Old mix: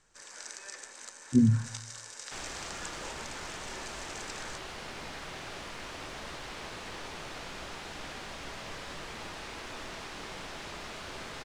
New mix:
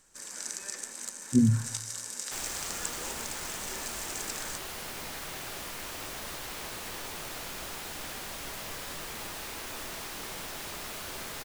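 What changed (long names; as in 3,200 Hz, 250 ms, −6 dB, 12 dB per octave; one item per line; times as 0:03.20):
first sound: remove high-pass filter 450 Hz 12 dB per octave
master: remove high-frequency loss of the air 94 metres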